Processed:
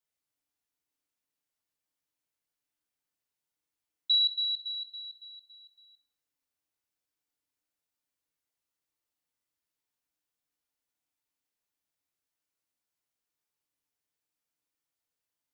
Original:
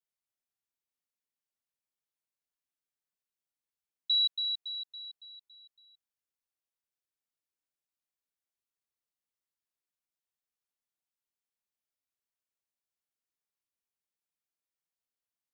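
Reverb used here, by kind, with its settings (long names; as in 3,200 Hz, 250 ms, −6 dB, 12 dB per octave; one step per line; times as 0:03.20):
feedback delay network reverb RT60 0.64 s, low-frequency decay 1.4×, high-frequency decay 0.75×, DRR 2 dB
level +2 dB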